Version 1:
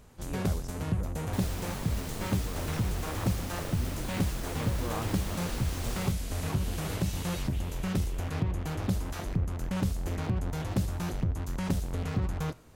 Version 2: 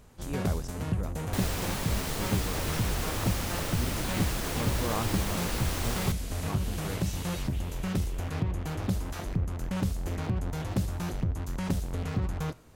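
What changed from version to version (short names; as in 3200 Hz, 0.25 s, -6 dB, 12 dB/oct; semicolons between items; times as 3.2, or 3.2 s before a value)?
speech +4.5 dB; second sound +7.5 dB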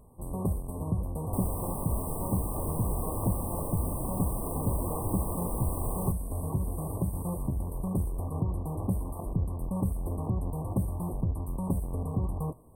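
speech -11.0 dB; master: add brick-wall FIR band-stop 1200–8000 Hz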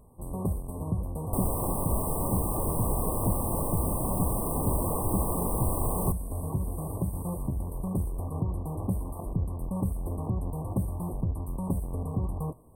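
second sound +5.5 dB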